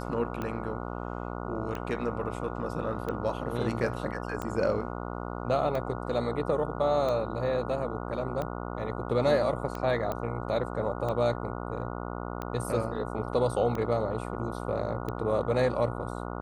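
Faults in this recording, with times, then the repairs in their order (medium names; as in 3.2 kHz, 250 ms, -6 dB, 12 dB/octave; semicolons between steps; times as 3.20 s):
buzz 60 Hz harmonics 24 -36 dBFS
tick 45 rpm -21 dBFS
10.12 s: pop -19 dBFS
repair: de-click; de-hum 60 Hz, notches 24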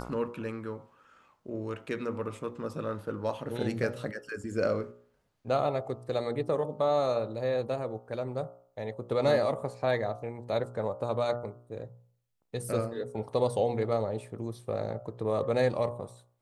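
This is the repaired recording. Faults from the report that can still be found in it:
nothing left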